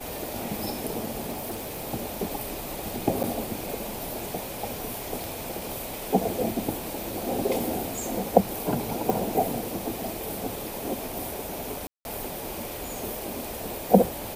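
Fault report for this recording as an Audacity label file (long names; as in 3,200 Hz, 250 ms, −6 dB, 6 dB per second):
1.310000	1.820000	clipping −29 dBFS
3.230000	3.240000	drop-out 8.1 ms
5.240000	5.240000	click
9.100000	9.100000	click
11.870000	12.050000	drop-out 181 ms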